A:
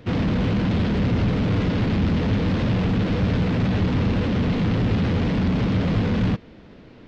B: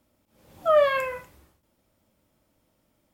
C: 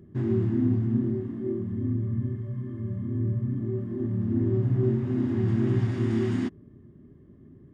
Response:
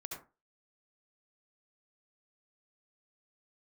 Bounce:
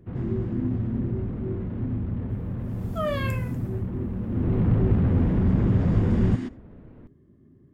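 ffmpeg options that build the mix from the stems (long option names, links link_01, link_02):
-filter_complex "[0:a]lowpass=1400,lowshelf=frequency=150:gain=11,volume=-6dB,afade=type=in:start_time=4.26:duration=0.37:silence=0.298538[link_01];[1:a]highshelf=frequency=2300:gain=11,adelay=2300,volume=-10.5dB[link_02];[2:a]volume=-5dB,asplit=2[link_03][link_04];[link_04]volume=-15dB[link_05];[3:a]atrim=start_sample=2205[link_06];[link_05][link_06]afir=irnorm=-1:irlink=0[link_07];[link_01][link_02][link_03][link_07]amix=inputs=4:normalize=0"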